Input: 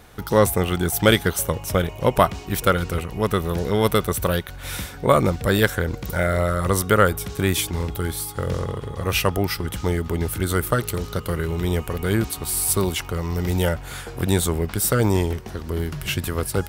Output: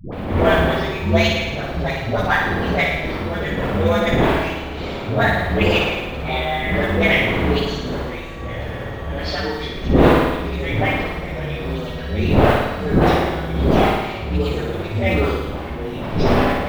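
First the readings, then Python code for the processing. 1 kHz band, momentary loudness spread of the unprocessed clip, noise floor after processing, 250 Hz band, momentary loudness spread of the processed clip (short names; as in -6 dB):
+4.0 dB, 8 LU, -28 dBFS, +4.0 dB, 11 LU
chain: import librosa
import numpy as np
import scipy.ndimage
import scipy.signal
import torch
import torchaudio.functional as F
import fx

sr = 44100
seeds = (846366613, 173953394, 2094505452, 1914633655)

p1 = fx.partial_stretch(x, sr, pct=126)
p2 = fx.dmg_wind(p1, sr, seeds[0], corner_hz=520.0, level_db=-25.0)
p3 = scipy.signal.sosfilt(scipy.signal.butter(4, 3600.0, 'lowpass', fs=sr, output='sos'), p2)
p4 = fx.high_shelf(p3, sr, hz=2500.0, db=11.5)
p5 = fx.level_steps(p4, sr, step_db=19)
p6 = p4 + (p5 * 10.0 ** (-2.5 / 20.0))
p7 = fx.mod_noise(p6, sr, seeds[1], snr_db=33)
p8 = fx.dispersion(p7, sr, late='highs', ms=124.0, hz=470.0)
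p9 = p8 + fx.room_flutter(p8, sr, wall_m=9.5, rt60_s=1.1, dry=0)
y = p9 * 10.0 ** (-3.0 / 20.0)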